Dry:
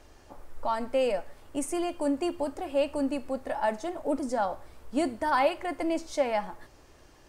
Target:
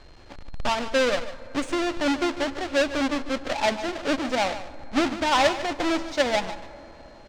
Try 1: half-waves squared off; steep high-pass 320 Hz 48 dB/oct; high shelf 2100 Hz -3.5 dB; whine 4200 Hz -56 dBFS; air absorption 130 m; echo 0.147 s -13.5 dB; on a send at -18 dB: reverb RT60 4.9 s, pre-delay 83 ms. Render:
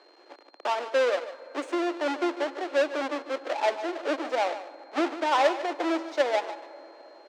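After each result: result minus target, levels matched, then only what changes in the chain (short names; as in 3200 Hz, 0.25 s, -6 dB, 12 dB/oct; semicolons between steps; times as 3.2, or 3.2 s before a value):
4000 Hz band -4.5 dB; 250 Hz band -2.5 dB
change: high shelf 2100 Hz +7 dB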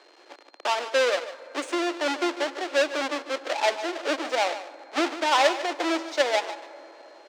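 250 Hz band -4.5 dB
remove: steep high-pass 320 Hz 48 dB/oct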